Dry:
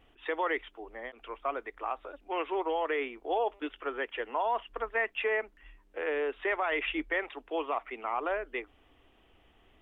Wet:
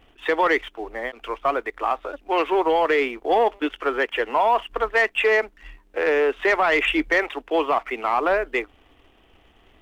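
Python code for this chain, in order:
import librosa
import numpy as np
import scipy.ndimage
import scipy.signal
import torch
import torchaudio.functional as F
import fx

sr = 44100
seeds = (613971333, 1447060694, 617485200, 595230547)

y = fx.leveller(x, sr, passes=1)
y = y * 10.0 ** (8.5 / 20.0)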